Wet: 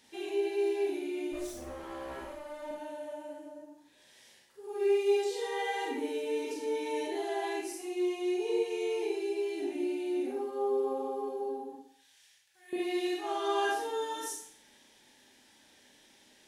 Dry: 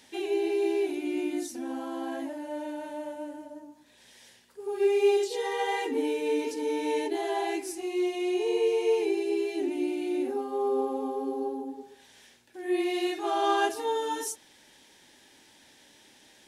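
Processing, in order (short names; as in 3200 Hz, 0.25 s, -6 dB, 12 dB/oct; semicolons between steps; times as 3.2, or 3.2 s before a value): 1.32–2.71 minimum comb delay 5.3 ms; 11.75–12.73 passive tone stack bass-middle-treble 10-0-10; Schroeder reverb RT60 0.53 s, combs from 28 ms, DRR -1 dB; gain -7.5 dB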